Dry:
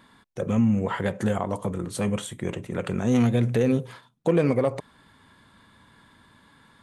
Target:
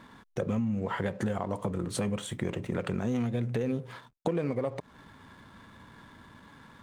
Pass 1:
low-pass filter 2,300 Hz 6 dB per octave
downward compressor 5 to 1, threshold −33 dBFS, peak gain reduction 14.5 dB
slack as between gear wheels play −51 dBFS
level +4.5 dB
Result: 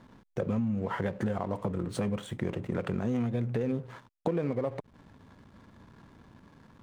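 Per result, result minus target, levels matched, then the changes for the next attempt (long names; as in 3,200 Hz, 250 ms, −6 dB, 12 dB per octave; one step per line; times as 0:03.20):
8,000 Hz band −8.0 dB; slack as between gear wheels: distortion +6 dB
change: low-pass filter 6,600 Hz 6 dB per octave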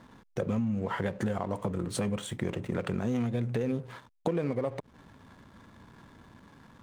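slack as between gear wheels: distortion +6 dB
change: slack as between gear wheels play −58 dBFS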